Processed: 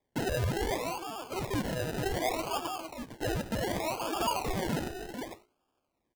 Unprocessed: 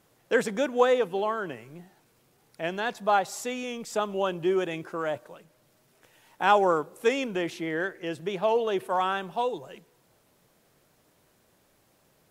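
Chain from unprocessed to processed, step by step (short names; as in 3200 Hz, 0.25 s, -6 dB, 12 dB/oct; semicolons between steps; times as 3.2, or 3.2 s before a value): speed mistake 7.5 ips tape played at 15 ips; gate -52 dBFS, range -15 dB; transient shaper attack -7 dB, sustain +9 dB; band shelf 3000 Hz -15 dB 1.2 oct; limiter -23 dBFS, peak gain reduction 11 dB; Chebyshev high-pass 240 Hz, order 10; notches 60/120/180/240/300/360/420 Hz; on a send: echo 0.457 s -7 dB; on the sum: decimation with a swept rate 31×, swing 60% 0.66 Hz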